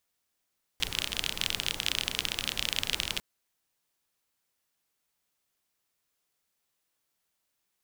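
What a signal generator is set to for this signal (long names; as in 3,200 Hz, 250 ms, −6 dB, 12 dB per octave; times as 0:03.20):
rain-like ticks over hiss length 2.40 s, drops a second 31, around 3,100 Hz, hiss −8 dB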